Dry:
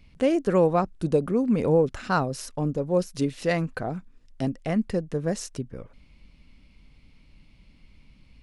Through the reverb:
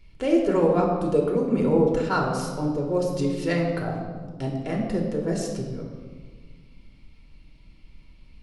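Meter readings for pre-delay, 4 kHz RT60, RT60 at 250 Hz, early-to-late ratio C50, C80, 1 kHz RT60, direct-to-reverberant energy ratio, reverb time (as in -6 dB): 3 ms, 1.1 s, 2.3 s, 4.0 dB, 5.5 dB, 1.5 s, -1.0 dB, 1.6 s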